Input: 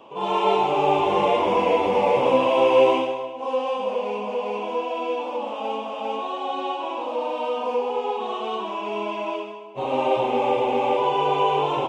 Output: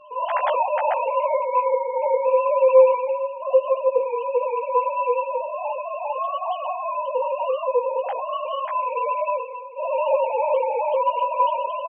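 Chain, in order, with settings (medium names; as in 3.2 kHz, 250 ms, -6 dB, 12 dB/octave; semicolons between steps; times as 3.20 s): formants replaced by sine waves; gain riding within 3 dB 0.5 s; doubling 15 ms -5 dB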